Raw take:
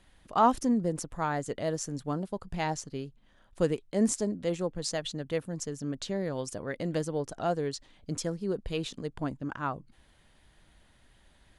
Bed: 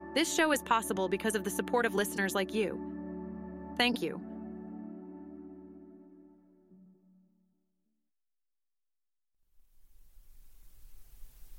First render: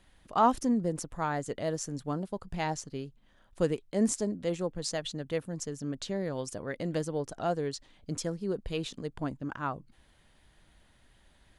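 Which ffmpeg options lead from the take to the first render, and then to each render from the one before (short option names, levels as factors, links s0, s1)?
-af "volume=0.891"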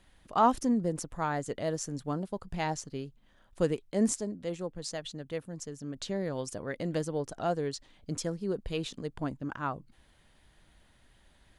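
-filter_complex "[0:a]asplit=3[s0][s1][s2];[s0]atrim=end=4.182[s3];[s1]atrim=start=4.178:end=5.962,asetpts=PTS-STARTPTS,volume=0.631[s4];[s2]atrim=start=5.958[s5];[s3][s4]acrossfade=d=0.004:c1=hsin:c2=hsin[s6];[s6][s5]acrossfade=d=0.004:c1=hsin:c2=hsin"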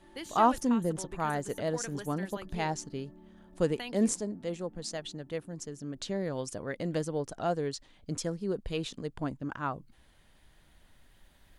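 -filter_complex "[1:a]volume=0.224[s0];[0:a][s0]amix=inputs=2:normalize=0"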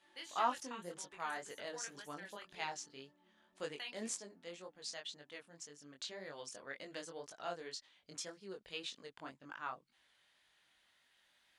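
-af "flanger=delay=20:depth=4:speed=1.9,bandpass=f=3200:t=q:w=0.6:csg=0"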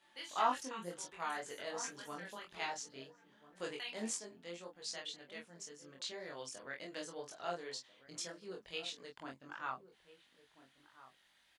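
-filter_complex "[0:a]asplit=2[s0][s1];[s1]adelay=23,volume=0.708[s2];[s0][s2]amix=inputs=2:normalize=0,asplit=2[s3][s4];[s4]adelay=1341,volume=0.178,highshelf=f=4000:g=-30.2[s5];[s3][s5]amix=inputs=2:normalize=0"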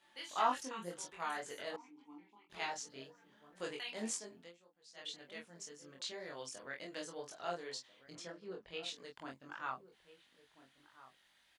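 -filter_complex "[0:a]asettb=1/sr,asplit=3[s0][s1][s2];[s0]atrim=end=1.764[s3];[s1]atrim=start=1.76:end=2.5,asetpts=PTS-STARTPTS,afade=t=in:d=0.004:c=qsin,afade=t=out:st=0.736:d=0.004:c=qsin,asplit=3[s4][s5][s6];[s4]bandpass=f=300:t=q:w=8,volume=1[s7];[s5]bandpass=f=870:t=q:w=8,volume=0.501[s8];[s6]bandpass=f=2240:t=q:w=8,volume=0.355[s9];[s7][s8][s9]amix=inputs=3:normalize=0[s10];[s2]atrim=start=2.496[s11];[s3][s10]acrossfade=d=0.004:c1=hsin:c2=qsin[s12];[s12][s11]acrossfade=d=0.004:c1=qsin:c2=hsin,asettb=1/sr,asplit=3[s13][s14][s15];[s13]atrim=end=8.154[s16];[s14]atrim=start=8.15:end=8.83,asetpts=PTS-STARTPTS,afade=t=in:d=0.004:c=qsin,afade=t=out:st=0.676:d=0.004:c=qsin,aemphasis=mode=reproduction:type=75fm[s17];[s15]atrim=start=8.826[s18];[s16][s17]acrossfade=d=0.004:c1=hsin:c2=qsin[s19];[s19][s18]acrossfade=d=0.004:c1=qsin:c2=hsin,asplit=3[s20][s21][s22];[s20]atrim=end=4.53,asetpts=PTS-STARTPTS,afade=t=out:st=4.41:d=0.12:silence=0.133352[s23];[s21]atrim=start=4.53:end=4.94,asetpts=PTS-STARTPTS,volume=0.133[s24];[s22]atrim=start=4.94,asetpts=PTS-STARTPTS,afade=t=in:d=0.12:silence=0.133352[s25];[s23][s24][s25]concat=n=3:v=0:a=1"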